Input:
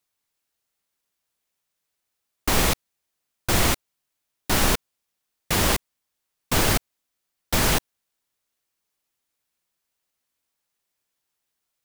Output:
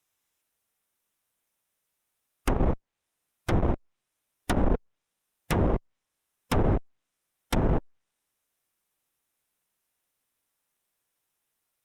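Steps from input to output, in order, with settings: band-stop 4.5 kHz, Q 5.1; harmonic-percussive split percussive -4 dB; low-pass that closes with the level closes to 620 Hz, closed at -21.5 dBFS; valve stage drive 21 dB, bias 0.4; trim +5.5 dB; Opus 48 kbps 48 kHz

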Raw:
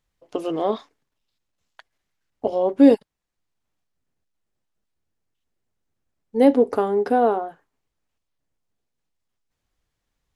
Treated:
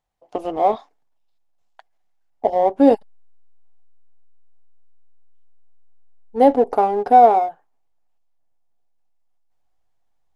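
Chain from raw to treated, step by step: peaking EQ 760 Hz +15 dB 0.74 oct; in parallel at -7 dB: hysteresis with a dead band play -12.5 dBFS; on the sum: trim -6 dB

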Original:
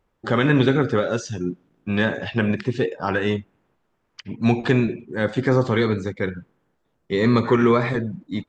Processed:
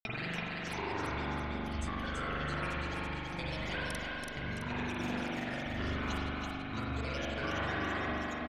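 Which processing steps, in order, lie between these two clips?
slices played last to first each 124 ms, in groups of 5; peaking EQ 280 Hz -14 dB 2.9 oct; compression, threshold -35 dBFS, peak gain reduction 13.5 dB; granulator 100 ms, pitch spread up and down by 12 st; on a send: feedback delay 332 ms, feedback 46%, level -3.5 dB; on the sum: spring tank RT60 2.1 s, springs 41 ms, chirp 50 ms, DRR -5.5 dB; trim -3.5 dB

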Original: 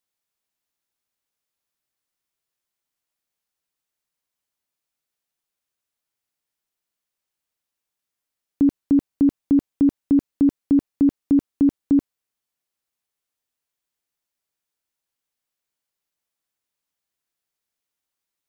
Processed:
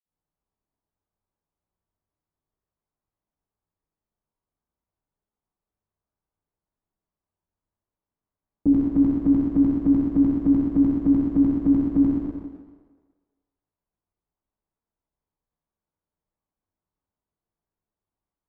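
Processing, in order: graphic EQ 125/250/500 Hz -5/-3/-10 dB; level-controlled noise filter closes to 620 Hz, open at -20 dBFS; reverberation RT60 1.5 s, pre-delay 47 ms; in parallel at +2 dB: compression, threshold -32 dBFS, peak gain reduction 12.5 dB; on the sum: tilt shelf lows +3.5 dB, about 840 Hz

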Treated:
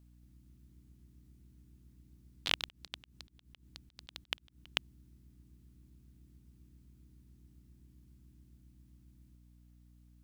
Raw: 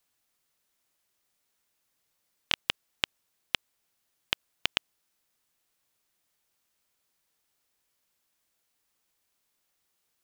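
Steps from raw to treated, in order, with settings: hum 60 Hz, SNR 14 dB; ever faster or slower copies 233 ms, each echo +2 st, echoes 3, each echo -6 dB; 2.65–4.66 s: slow attack 123 ms; trim -4.5 dB

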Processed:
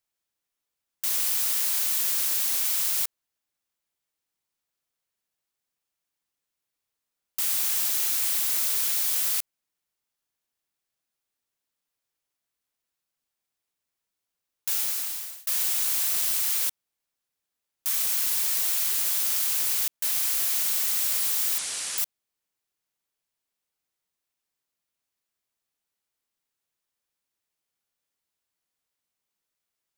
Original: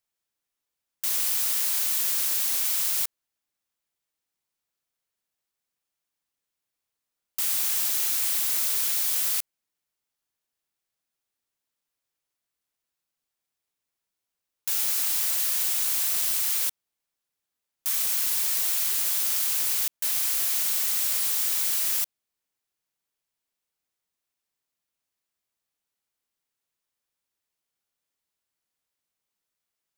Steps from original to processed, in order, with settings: 14.72–15.47 s: fade out; 21.58–21.98 s: steep low-pass 10 kHz 48 dB/octave

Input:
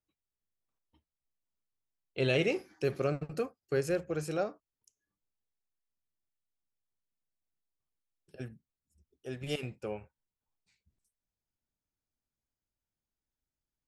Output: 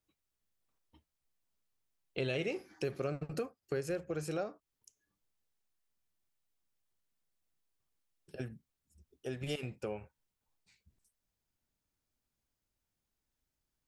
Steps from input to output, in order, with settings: compression 2.5:1, threshold -43 dBFS, peak gain reduction 12.5 dB; trim +5 dB

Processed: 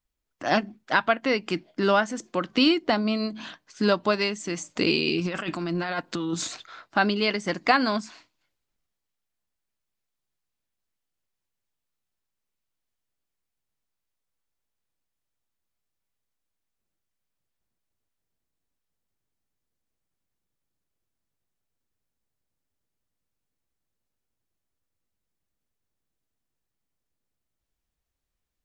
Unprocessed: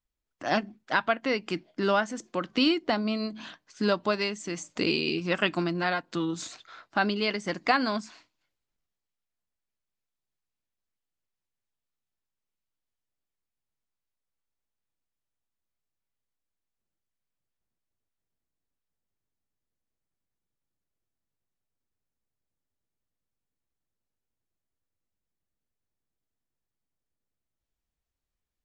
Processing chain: 5.18–6.66 s: compressor with a negative ratio -32 dBFS, ratio -1; trim +3.5 dB

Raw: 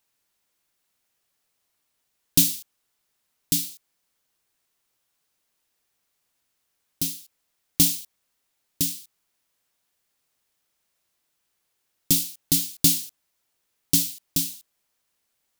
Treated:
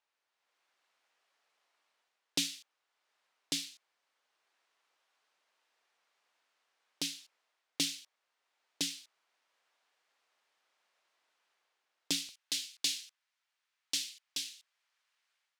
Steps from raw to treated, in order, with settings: high-pass 670 Hz 12 dB/octave, from 12.29 s 1.4 kHz; level rider gain up to 8.5 dB; tape spacing loss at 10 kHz 23 dB

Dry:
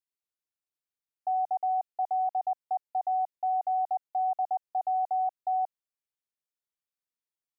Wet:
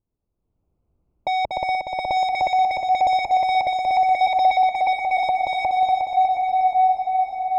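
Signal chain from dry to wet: local Wiener filter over 25 samples; 4.26–5.18 s: high-pass 630 Hz -> 820 Hz 24 dB/octave; in parallel at -10.5 dB: saturation -37 dBFS, distortion -11 dB; on the sum: level rider gain up to 9.5 dB; echo that smears into a reverb 999 ms, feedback 55%, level -9 dB; sine folder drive 12 dB, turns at -13 dBFS; tilt EQ -5.5 dB/octave; on a send: multi-head delay 120 ms, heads second and third, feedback 63%, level -6.5 dB; on the sum: trim -5 dB

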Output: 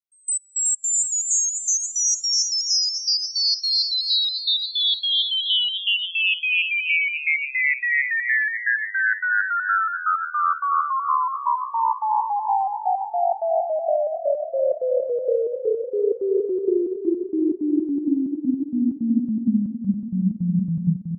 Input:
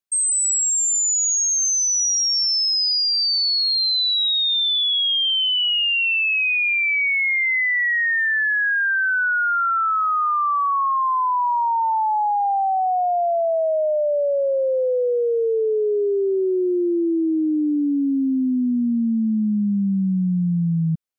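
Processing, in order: trance gate "x..x..xx.xx.x.x" 161 bpm -24 dB; bouncing-ball echo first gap 370 ms, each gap 0.9×, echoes 5; upward expansion 1.5:1, over -39 dBFS

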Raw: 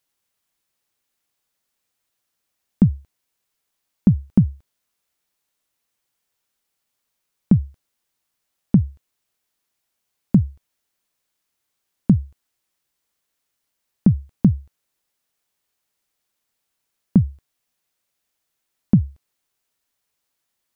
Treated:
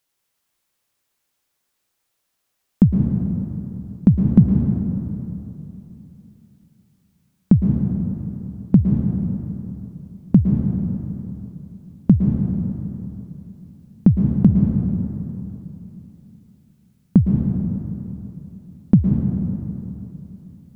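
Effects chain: plate-style reverb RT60 3.3 s, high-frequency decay 0.5×, pre-delay 100 ms, DRR 1 dB; trim +1.5 dB

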